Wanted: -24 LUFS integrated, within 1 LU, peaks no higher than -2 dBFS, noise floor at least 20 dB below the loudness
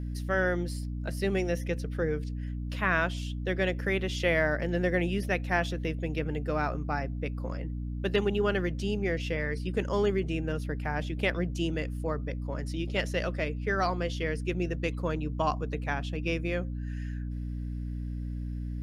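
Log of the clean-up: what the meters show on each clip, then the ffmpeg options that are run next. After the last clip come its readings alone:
hum 60 Hz; harmonics up to 300 Hz; hum level -32 dBFS; loudness -31.0 LUFS; peak -11.5 dBFS; loudness target -24.0 LUFS
-> -af "bandreject=f=60:t=h:w=4,bandreject=f=120:t=h:w=4,bandreject=f=180:t=h:w=4,bandreject=f=240:t=h:w=4,bandreject=f=300:t=h:w=4"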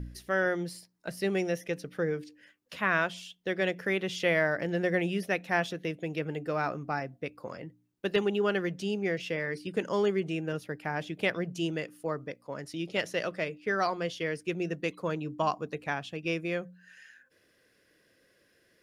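hum none; loudness -31.5 LUFS; peak -13.0 dBFS; loudness target -24.0 LUFS
-> -af "volume=7.5dB"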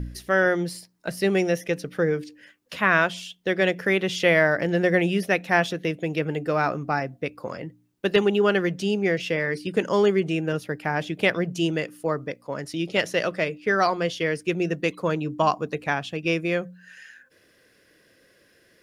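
loudness -24.0 LUFS; peak -5.5 dBFS; noise floor -61 dBFS

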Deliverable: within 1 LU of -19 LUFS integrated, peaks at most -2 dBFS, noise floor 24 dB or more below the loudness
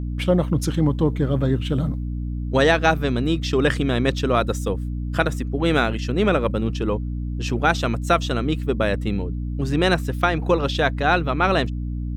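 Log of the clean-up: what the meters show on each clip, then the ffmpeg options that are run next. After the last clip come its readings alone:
hum 60 Hz; harmonics up to 300 Hz; hum level -24 dBFS; loudness -21.5 LUFS; peak -3.5 dBFS; loudness target -19.0 LUFS
-> -af "bandreject=f=60:t=h:w=4,bandreject=f=120:t=h:w=4,bandreject=f=180:t=h:w=4,bandreject=f=240:t=h:w=4,bandreject=f=300:t=h:w=4"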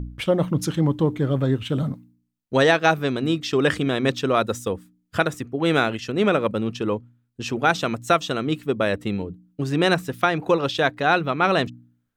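hum none; loudness -22.5 LUFS; peak -4.5 dBFS; loudness target -19.0 LUFS
-> -af "volume=3.5dB,alimiter=limit=-2dB:level=0:latency=1"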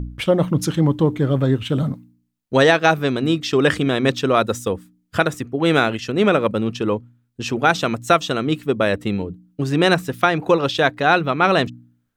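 loudness -19.0 LUFS; peak -2.0 dBFS; noise floor -68 dBFS

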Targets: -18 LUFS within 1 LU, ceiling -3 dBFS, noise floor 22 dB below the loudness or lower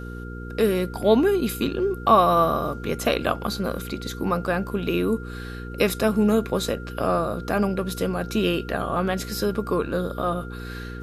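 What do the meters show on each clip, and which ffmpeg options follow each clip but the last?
hum 60 Hz; harmonics up to 480 Hz; hum level -33 dBFS; steady tone 1400 Hz; tone level -41 dBFS; loudness -23.5 LUFS; peak -4.5 dBFS; loudness target -18.0 LUFS
-> -af "bandreject=f=60:t=h:w=4,bandreject=f=120:t=h:w=4,bandreject=f=180:t=h:w=4,bandreject=f=240:t=h:w=4,bandreject=f=300:t=h:w=4,bandreject=f=360:t=h:w=4,bandreject=f=420:t=h:w=4,bandreject=f=480:t=h:w=4"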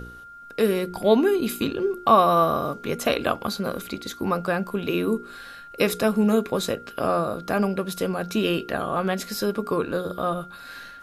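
hum none; steady tone 1400 Hz; tone level -41 dBFS
-> -af "bandreject=f=1.4k:w=30"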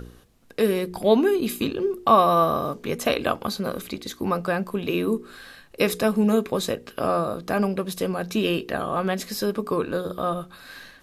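steady tone none; loudness -24.0 LUFS; peak -5.0 dBFS; loudness target -18.0 LUFS
-> -af "volume=6dB,alimiter=limit=-3dB:level=0:latency=1"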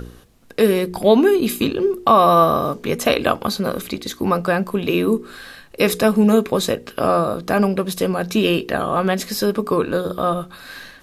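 loudness -18.5 LUFS; peak -3.0 dBFS; noise floor -46 dBFS

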